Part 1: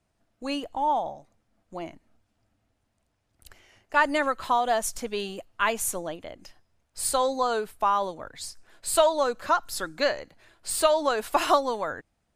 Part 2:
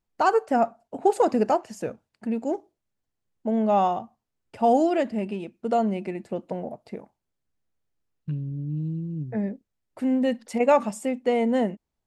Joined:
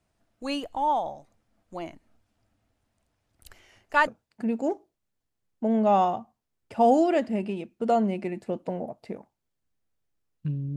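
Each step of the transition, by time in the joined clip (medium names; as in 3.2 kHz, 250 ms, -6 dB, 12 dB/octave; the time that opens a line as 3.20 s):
part 1
4.07 s: go over to part 2 from 1.90 s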